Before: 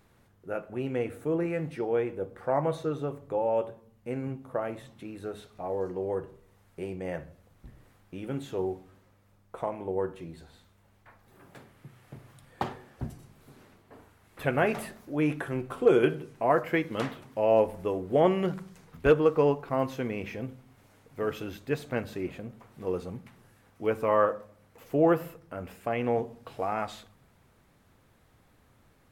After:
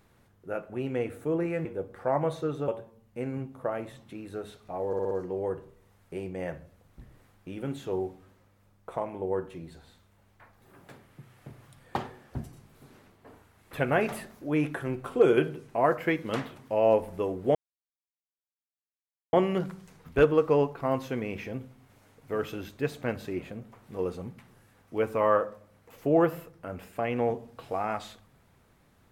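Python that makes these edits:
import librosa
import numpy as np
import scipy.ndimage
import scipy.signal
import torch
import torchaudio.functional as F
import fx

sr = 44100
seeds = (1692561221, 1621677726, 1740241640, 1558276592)

y = fx.edit(x, sr, fx.cut(start_s=1.65, length_s=0.42),
    fx.cut(start_s=3.1, length_s=0.48),
    fx.stutter(start_s=5.77, slice_s=0.06, count=5),
    fx.insert_silence(at_s=18.21, length_s=1.78), tone=tone)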